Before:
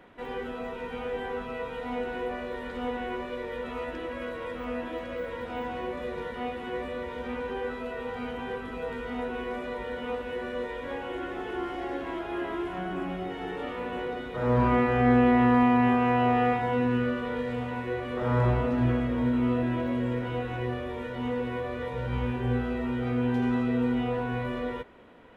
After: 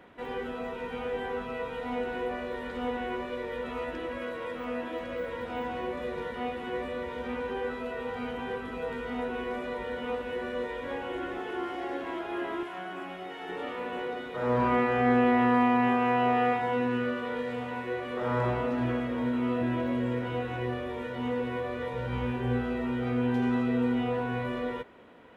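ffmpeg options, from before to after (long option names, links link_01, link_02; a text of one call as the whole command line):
ffmpeg -i in.wav -af "asetnsamples=nb_out_samples=441:pad=0,asendcmd='4.19 highpass f 140;5.01 highpass f 55;11.38 highpass f 220;12.63 highpass f 770;13.49 highpass f 270;19.61 highpass f 100',highpass=frequency=42:poles=1" out.wav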